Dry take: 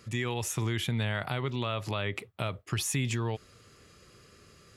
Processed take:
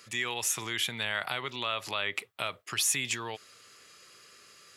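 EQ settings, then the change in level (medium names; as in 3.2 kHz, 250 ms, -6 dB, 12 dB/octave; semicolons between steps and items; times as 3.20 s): high-pass 1.5 kHz 6 dB/octave; +6.0 dB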